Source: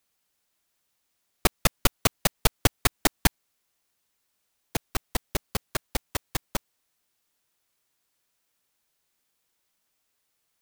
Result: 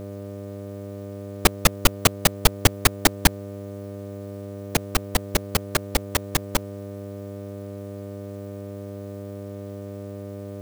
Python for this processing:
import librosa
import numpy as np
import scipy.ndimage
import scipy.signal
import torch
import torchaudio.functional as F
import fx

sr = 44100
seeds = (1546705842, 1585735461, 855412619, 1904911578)

y = fx.dmg_buzz(x, sr, base_hz=100.0, harmonics=6, level_db=-49.0, tilt_db=-1, odd_only=False)
y = fx.power_curve(y, sr, exponent=0.7)
y = F.gain(torch.from_numpy(y), 1.0).numpy()